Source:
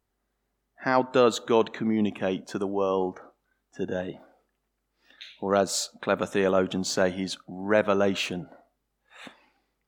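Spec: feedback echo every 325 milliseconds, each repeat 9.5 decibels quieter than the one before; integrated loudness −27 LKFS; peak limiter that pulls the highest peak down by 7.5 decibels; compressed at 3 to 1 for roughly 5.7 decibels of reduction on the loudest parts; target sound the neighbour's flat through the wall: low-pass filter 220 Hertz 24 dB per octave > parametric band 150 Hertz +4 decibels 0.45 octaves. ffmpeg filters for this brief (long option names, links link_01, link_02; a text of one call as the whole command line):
ffmpeg -i in.wav -af "acompressor=threshold=-23dB:ratio=3,alimiter=limit=-19dB:level=0:latency=1,lowpass=frequency=220:width=0.5412,lowpass=frequency=220:width=1.3066,equalizer=frequency=150:width_type=o:width=0.45:gain=4,aecho=1:1:325|650|975|1300:0.335|0.111|0.0365|0.012,volume=12dB" out.wav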